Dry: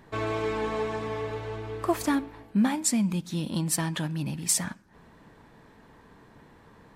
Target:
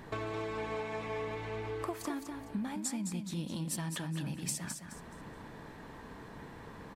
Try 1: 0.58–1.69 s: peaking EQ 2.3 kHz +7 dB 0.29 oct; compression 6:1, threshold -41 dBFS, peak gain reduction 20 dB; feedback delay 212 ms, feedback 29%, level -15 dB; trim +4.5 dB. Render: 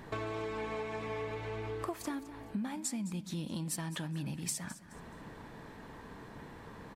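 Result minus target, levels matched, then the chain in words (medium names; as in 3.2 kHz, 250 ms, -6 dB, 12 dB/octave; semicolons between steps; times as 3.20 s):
echo-to-direct -8.5 dB
0.58–1.69 s: peaking EQ 2.3 kHz +7 dB 0.29 oct; compression 6:1, threshold -41 dBFS, peak gain reduction 20 dB; feedback delay 212 ms, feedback 29%, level -6.5 dB; trim +4.5 dB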